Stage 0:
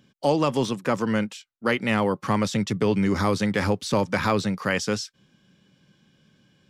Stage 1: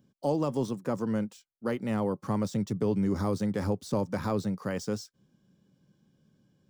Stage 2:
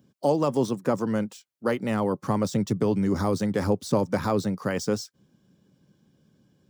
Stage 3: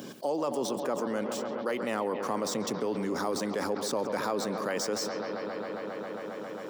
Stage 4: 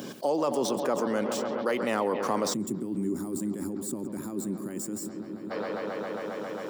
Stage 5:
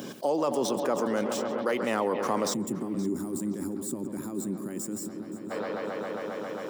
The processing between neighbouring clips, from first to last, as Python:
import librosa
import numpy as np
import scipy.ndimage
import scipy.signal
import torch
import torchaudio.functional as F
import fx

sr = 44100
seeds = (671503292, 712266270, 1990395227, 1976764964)

y1 = scipy.ndimage.median_filter(x, 3, mode='constant')
y1 = fx.peak_eq(y1, sr, hz=2500.0, db=-14.5, octaves=2.1)
y1 = F.gain(torch.from_numpy(y1), -4.5).numpy()
y2 = scipy.signal.sosfilt(scipy.signal.butter(2, 51.0, 'highpass', fs=sr, output='sos'), y1)
y2 = fx.hpss(y2, sr, part='harmonic', gain_db=-5)
y2 = F.gain(torch.from_numpy(y2), 7.5).numpy()
y3 = scipy.signal.sosfilt(scipy.signal.butter(2, 350.0, 'highpass', fs=sr, output='sos'), y2)
y3 = fx.echo_bbd(y3, sr, ms=135, stages=4096, feedback_pct=83, wet_db=-15)
y3 = fx.env_flatten(y3, sr, amount_pct=70)
y3 = F.gain(torch.from_numpy(y3), -8.0).numpy()
y4 = fx.spec_box(y3, sr, start_s=2.54, length_s=2.97, low_hz=400.0, high_hz=6800.0, gain_db=-19)
y4 = F.gain(torch.from_numpy(y4), 3.5).numpy()
y5 = fx.notch(y4, sr, hz=4500.0, q=21.0)
y5 = fx.echo_feedback(y5, sr, ms=523, feedback_pct=26, wet_db=-17.5)